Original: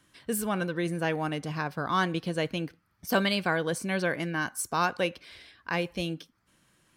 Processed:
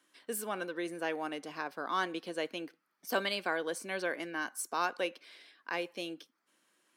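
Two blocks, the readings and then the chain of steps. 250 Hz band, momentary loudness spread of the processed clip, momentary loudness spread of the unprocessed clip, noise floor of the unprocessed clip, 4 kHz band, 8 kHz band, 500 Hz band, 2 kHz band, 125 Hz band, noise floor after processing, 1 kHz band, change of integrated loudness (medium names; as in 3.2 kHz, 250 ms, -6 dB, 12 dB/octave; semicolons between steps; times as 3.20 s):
-10.0 dB, 11 LU, 9 LU, -70 dBFS, -5.5 dB, -5.5 dB, -5.5 dB, -5.5 dB, -21.0 dB, -80 dBFS, -5.5 dB, -6.5 dB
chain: high-pass 270 Hz 24 dB/octave; trim -5.5 dB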